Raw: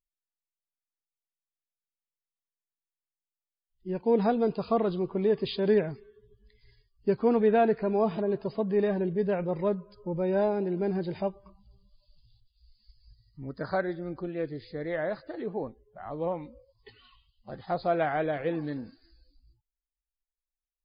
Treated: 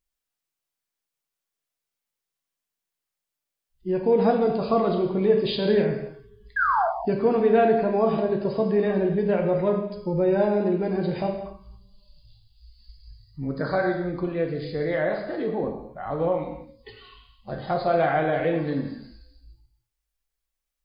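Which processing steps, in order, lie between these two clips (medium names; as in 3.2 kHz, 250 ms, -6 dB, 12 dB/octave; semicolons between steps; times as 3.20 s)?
in parallel at +1.5 dB: compression, threshold -33 dBFS, peak gain reduction 14 dB; on the sum: painted sound fall, 6.56–6.88 s, 630–1700 Hz -23 dBFS; gated-style reverb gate 320 ms falling, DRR 1.5 dB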